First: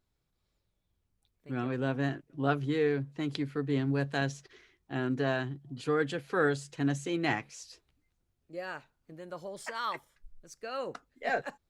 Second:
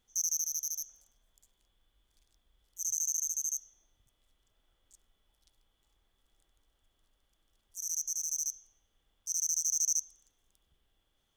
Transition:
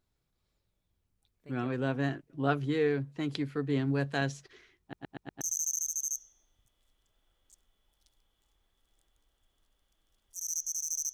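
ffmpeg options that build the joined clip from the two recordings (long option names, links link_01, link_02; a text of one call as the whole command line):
ffmpeg -i cue0.wav -i cue1.wav -filter_complex "[0:a]apad=whole_dur=11.13,atrim=end=11.13,asplit=5[link_01][link_02][link_03][link_04][link_05];[link_01]atrim=end=4.932[link_06];[link_02]atrim=start=4.808:end=4.932[link_07];[link_03]atrim=start=4.808:end=4.932[link_08];[link_04]atrim=start=4.808:end=4.932[link_09];[link_05]atrim=start=4.808:end=4.932[link_10];[1:a]atrim=start=2.818:end=8.54[link_11];[link_06][link_07]acrossfade=duration=0.004:curve1=hsin:curve2=hsin[link_12];[link_12][link_08]acrossfade=duration=0.004:curve1=hsin:curve2=hsin[link_13];[link_13][link_09]acrossfade=duration=0.004:curve1=hsin:curve2=hsin[link_14];[link_14][link_10]acrossfade=duration=0.004:curve1=hsin:curve2=hsin[link_15];[link_15][link_11]acrossfade=duration=0.004:curve1=hsin:curve2=hsin" out.wav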